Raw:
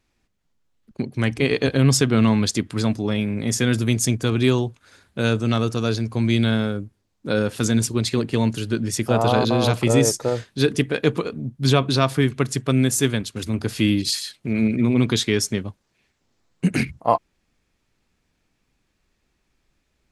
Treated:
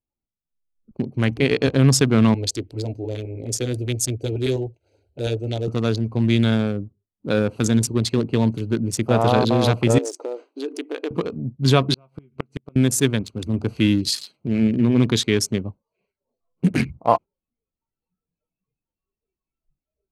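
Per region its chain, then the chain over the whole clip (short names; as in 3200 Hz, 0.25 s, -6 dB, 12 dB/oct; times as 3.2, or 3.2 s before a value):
2.34–5.68 LFO notch saw up 9.9 Hz 300–2900 Hz + fixed phaser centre 480 Hz, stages 4
9.98–11.11 compressor 3:1, threshold -24 dBFS + brick-wall FIR band-pass 260–11000 Hz
11.88–12.76 dynamic EQ 2200 Hz, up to +6 dB, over -37 dBFS, Q 0.83 + doubler 13 ms -7.5 dB + flipped gate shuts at -10 dBFS, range -35 dB
whole clip: Wiener smoothing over 25 samples; spectral noise reduction 21 dB; gain +1.5 dB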